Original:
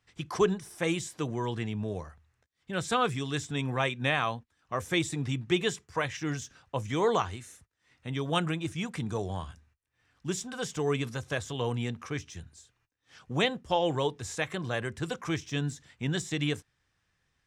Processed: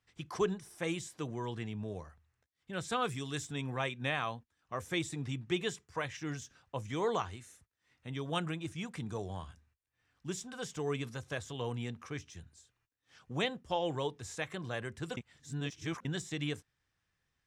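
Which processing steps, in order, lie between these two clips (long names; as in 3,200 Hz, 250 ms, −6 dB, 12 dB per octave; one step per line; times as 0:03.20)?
0:03.02–0:03.53: high-shelf EQ 8,400 Hz +10 dB
0:15.17–0:16.05: reverse
level −6.5 dB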